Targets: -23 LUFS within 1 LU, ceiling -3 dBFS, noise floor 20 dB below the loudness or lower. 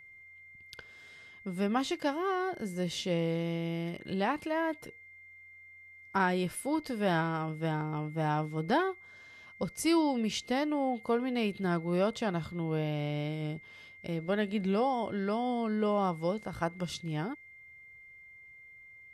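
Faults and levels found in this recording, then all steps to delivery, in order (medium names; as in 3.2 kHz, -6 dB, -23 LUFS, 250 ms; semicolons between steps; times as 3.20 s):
steady tone 2.1 kHz; tone level -51 dBFS; loudness -32.5 LUFS; peak level -16.0 dBFS; loudness target -23.0 LUFS
-> band-stop 2.1 kHz, Q 30; trim +9.5 dB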